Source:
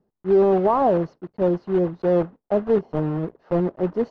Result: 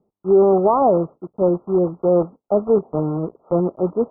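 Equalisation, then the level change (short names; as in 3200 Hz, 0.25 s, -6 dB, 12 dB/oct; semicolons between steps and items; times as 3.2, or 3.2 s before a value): band-pass 1100 Hz, Q 0.57; brick-wall FIR low-pass 1400 Hz; tilt -4 dB/oct; +2.5 dB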